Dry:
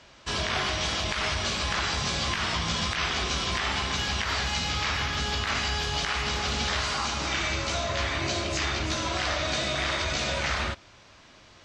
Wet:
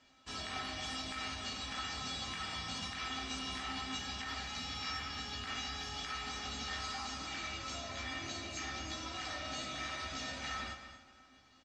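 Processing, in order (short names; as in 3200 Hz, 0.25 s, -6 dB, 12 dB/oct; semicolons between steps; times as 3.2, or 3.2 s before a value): resonator 260 Hz, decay 0.19 s, harmonics odd, mix 90%; on a send: echo 0.23 s -11.5 dB; on the sum: plate-style reverb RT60 2.7 s, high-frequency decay 0.75×, DRR 11.5 dB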